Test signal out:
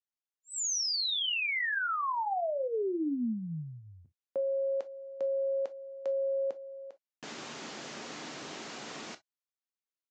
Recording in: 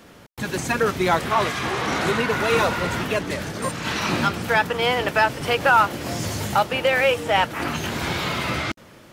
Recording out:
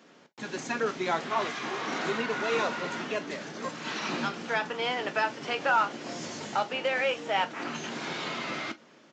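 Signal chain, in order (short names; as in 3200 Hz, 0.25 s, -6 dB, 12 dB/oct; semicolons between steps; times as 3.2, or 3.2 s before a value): HPF 170 Hz 24 dB/oct; non-linear reverb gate 80 ms falling, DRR 9 dB; downsampling 16000 Hz; gain -9 dB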